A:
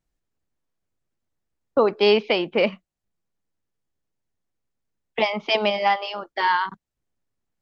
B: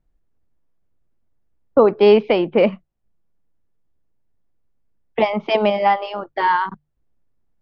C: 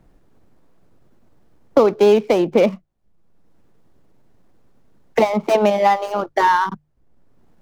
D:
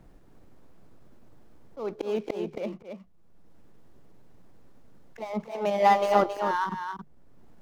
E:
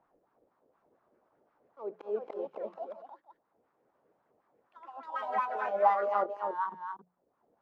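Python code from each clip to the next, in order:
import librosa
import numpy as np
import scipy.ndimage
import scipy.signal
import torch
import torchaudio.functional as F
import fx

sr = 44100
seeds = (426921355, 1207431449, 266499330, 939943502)

y1 = fx.lowpass(x, sr, hz=1000.0, slope=6)
y1 = fx.low_shelf(y1, sr, hz=70.0, db=9.5)
y1 = fx.hum_notches(y1, sr, base_hz=50, count=3)
y1 = y1 * 10.0 ** (6.5 / 20.0)
y2 = scipy.ndimage.median_filter(y1, 15, mode='constant')
y2 = fx.band_squash(y2, sr, depth_pct=70)
y2 = y2 * 10.0 ** (1.5 / 20.0)
y3 = fx.auto_swell(y2, sr, attack_ms=684.0)
y3 = y3 + 10.0 ** (-7.0 / 20.0) * np.pad(y3, (int(273 * sr / 1000.0), 0))[:len(y3)]
y4 = fx.wah_lfo(y3, sr, hz=4.1, low_hz=460.0, high_hz=1200.0, q=2.8)
y4 = fx.echo_pitch(y4, sr, ms=735, semitones=4, count=2, db_per_echo=-6.0)
y4 = fx.hum_notches(y4, sr, base_hz=60, count=3)
y4 = y4 * 10.0 ** (-1.5 / 20.0)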